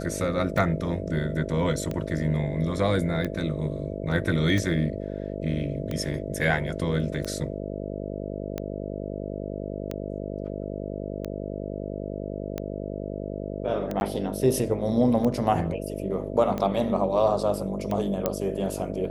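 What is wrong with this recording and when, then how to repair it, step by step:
buzz 50 Hz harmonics 13 -33 dBFS
tick 45 rpm
14–14.01 gap 11 ms
18.26 pop -10 dBFS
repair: de-click; de-hum 50 Hz, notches 13; interpolate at 14, 11 ms

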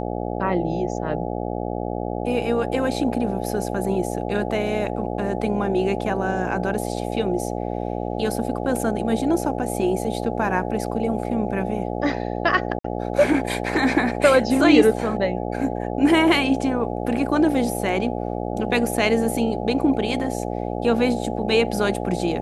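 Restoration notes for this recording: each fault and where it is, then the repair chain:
buzz 60 Hz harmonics 14 -27 dBFS
12.79–12.84 gap 54 ms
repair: de-hum 60 Hz, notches 14; interpolate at 12.79, 54 ms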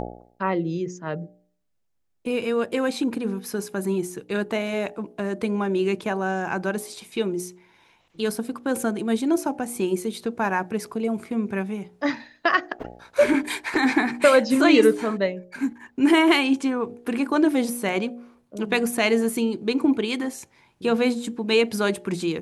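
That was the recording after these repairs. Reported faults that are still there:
none

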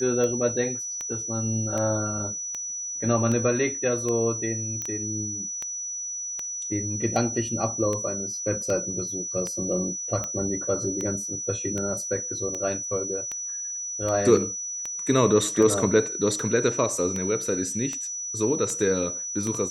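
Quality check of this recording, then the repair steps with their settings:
tick 78 rpm -17 dBFS
tone 5900 Hz -30 dBFS
4.82 pop -17 dBFS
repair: de-click; notch 5900 Hz, Q 30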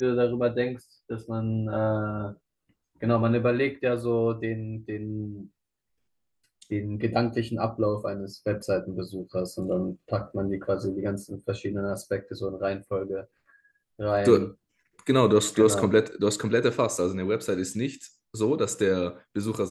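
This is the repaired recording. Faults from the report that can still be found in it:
4.82 pop

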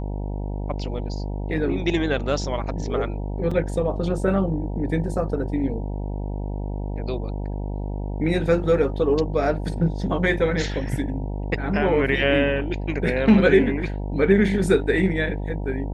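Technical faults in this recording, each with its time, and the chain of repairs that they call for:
buzz 50 Hz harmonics 19 -28 dBFS
3.51 gap 4 ms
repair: de-hum 50 Hz, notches 19; interpolate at 3.51, 4 ms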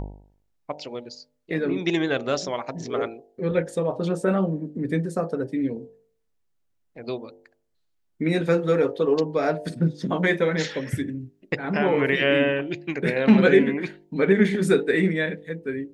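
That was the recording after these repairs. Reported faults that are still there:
none

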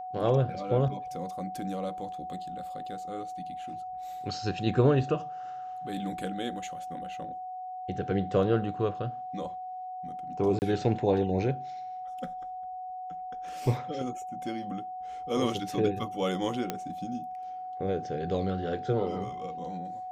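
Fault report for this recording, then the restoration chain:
tone 740 Hz -36 dBFS
10.59–10.62 gap 29 ms
16.7 pop -15 dBFS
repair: de-click; notch 740 Hz, Q 30; interpolate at 10.59, 29 ms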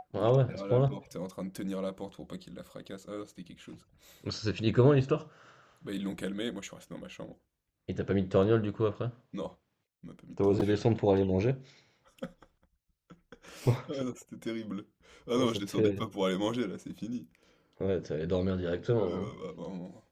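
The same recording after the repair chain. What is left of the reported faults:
none

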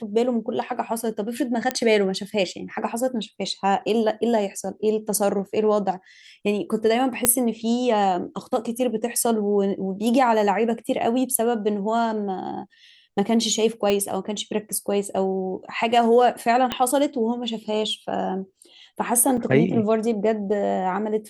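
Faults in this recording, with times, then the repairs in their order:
1.71 pop -7 dBFS
7.25 pop -3 dBFS
13.9 pop -9 dBFS
16.72 pop -9 dBFS
19.37–19.38 gap 5.6 ms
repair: de-click; interpolate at 19.37, 5.6 ms

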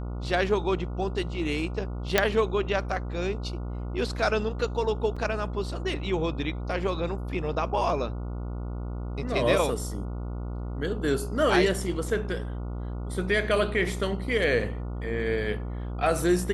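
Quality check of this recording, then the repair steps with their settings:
buzz 60 Hz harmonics 24 -33 dBFS
2.18 pop -4 dBFS
5.16–5.17 gap 5.4 ms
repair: de-click; de-hum 60 Hz, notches 24; interpolate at 5.16, 5.4 ms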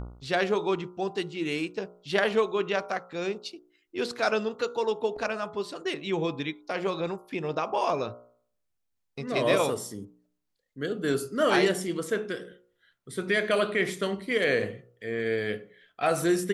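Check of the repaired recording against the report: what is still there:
none

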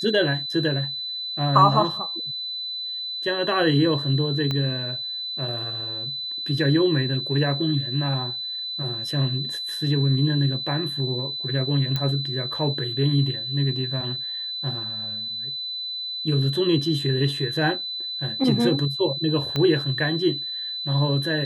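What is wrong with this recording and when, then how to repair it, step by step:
tone 4000 Hz -28 dBFS
4.51 pop -14 dBFS
11.96 pop -12 dBFS
19.56 pop -12 dBFS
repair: de-click; notch 4000 Hz, Q 30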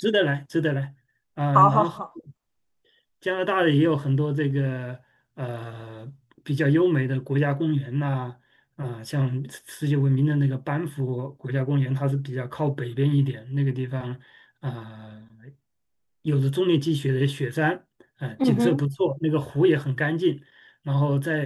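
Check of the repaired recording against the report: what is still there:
4.51 pop
19.56 pop

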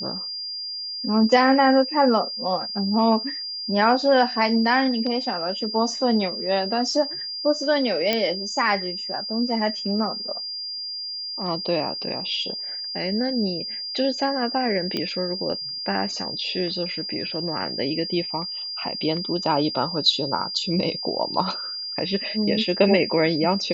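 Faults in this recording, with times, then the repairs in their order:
tone 4800 Hz -29 dBFS
8.13 pop -7 dBFS
14.97 pop -13 dBFS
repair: de-click; notch 4800 Hz, Q 30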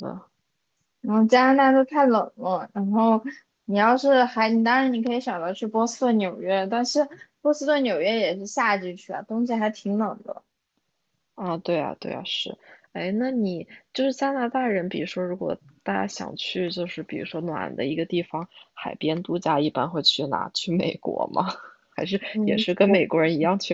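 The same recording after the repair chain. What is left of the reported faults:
none

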